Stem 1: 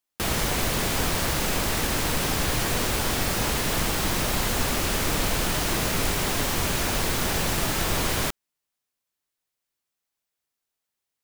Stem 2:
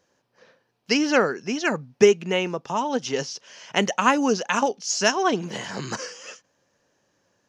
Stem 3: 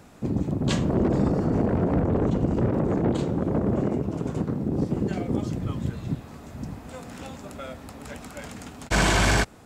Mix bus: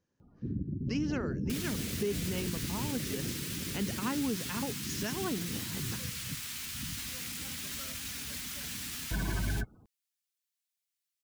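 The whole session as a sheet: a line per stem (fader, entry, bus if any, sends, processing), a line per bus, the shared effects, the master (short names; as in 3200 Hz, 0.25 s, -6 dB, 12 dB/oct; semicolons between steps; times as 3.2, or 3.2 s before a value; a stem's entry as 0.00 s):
+1.0 dB, 1.30 s, no send, Bessel high-pass 1900 Hz, order 2; limiter -27.5 dBFS, peak gain reduction 10.5 dB; flange 0.44 Hz, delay 3.9 ms, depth 9 ms, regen +36%
-10.5 dB, 0.00 s, no send, tilt shelf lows +7 dB
-5.0 dB, 0.20 s, no send, high shelf 3200 Hz -9.5 dB; spectral gate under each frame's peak -15 dB strong; auto duck -7 dB, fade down 1.95 s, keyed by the second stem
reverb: off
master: bell 630 Hz -12 dB 1.6 oct; limiter -23.5 dBFS, peak gain reduction 8.5 dB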